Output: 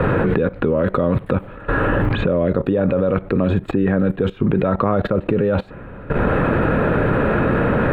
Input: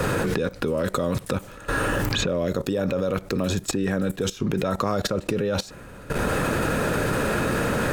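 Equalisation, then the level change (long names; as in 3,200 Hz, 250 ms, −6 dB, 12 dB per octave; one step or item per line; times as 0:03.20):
high-frequency loss of the air 470 metres
parametric band 5,500 Hz −14 dB 0.68 octaves
+8.0 dB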